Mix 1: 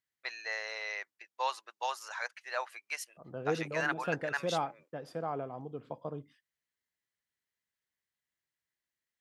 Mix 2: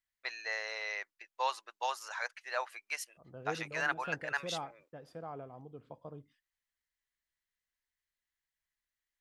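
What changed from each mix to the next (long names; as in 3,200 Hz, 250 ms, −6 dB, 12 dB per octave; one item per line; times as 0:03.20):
second voice −8.0 dB
master: remove high-pass filter 130 Hz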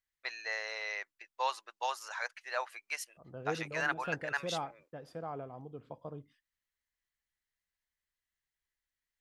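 second voice +3.0 dB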